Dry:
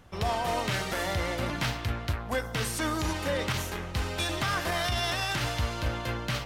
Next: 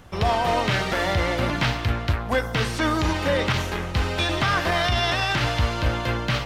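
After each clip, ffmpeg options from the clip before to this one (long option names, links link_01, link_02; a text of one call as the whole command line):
ffmpeg -i in.wav -filter_complex "[0:a]acrossover=split=5200[link_01][link_02];[link_02]acompressor=threshold=-54dB:ratio=4:attack=1:release=60[link_03];[link_01][link_03]amix=inputs=2:normalize=0,volume=7.5dB" out.wav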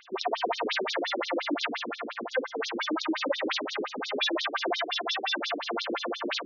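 ffmpeg -i in.wav -af "alimiter=limit=-18.5dB:level=0:latency=1:release=101,afftfilt=real='re*between(b*sr/1024,300*pow(4900/300,0.5+0.5*sin(2*PI*5.7*pts/sr))/1.41,300*pow(4900/300,0.5+0.5*sin(2*PI*5.7*pts/sr))*1.41)':imag='im*between(b*sr/1024,300*pow(4900/300,0.5+0.5*sin(2*PI*5.7*pts/sr))/1.41,300*pow(4900/300,0.5+0.5*sin(2*PI*5.7*pts/sr))*1.41)':win_size=1024:overlap=0.75,volume=7dB" out.wav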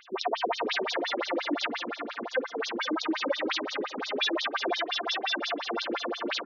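ffmpeg -i in.wav -filter_complex "[0:a]asplit=2[link_01][link_02];[link_02]adelay=484,volume=-19dB,highshelf=frequency=4000:gain=-10.9[link_03];[link_01][link_03]amix=inputs=2:normalize=0" out.wav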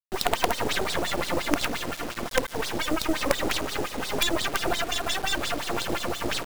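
ffmpeg -i in.wav -filter_complex "[0:a]acrossover=split=200[link_01][link_02];[link_01]acontrast=81[link_03];[link_03][link_02]amix=inputs=2:normalize=0,acrusher=bits=4:dc=4:mix=0:aa=0.000001,volume=6.5dB" out.wav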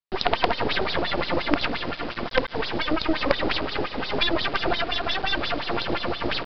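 ffmpeg -i in.wav -af "aresample=11025,aresample=44100,volume=2.5dB" out.wav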